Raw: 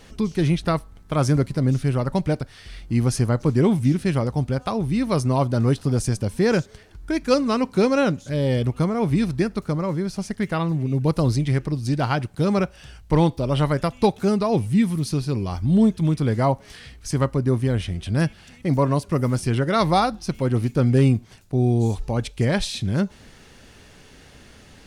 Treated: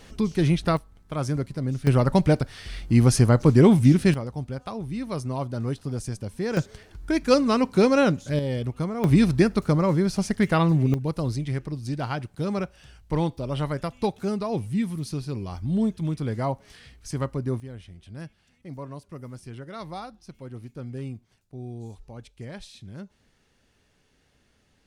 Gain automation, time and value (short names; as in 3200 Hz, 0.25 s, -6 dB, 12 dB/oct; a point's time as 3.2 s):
-1 dB
from 0.77 s -7.5 dB
from 1.87 s +3 dB
from 4.14 s -9 dB
from 6.57 s 0 dB
from 8.39 s -6.5 dB
from 9.04 s +3 dB
from 10.94 s -7 dB
from 17.6 s -18 dB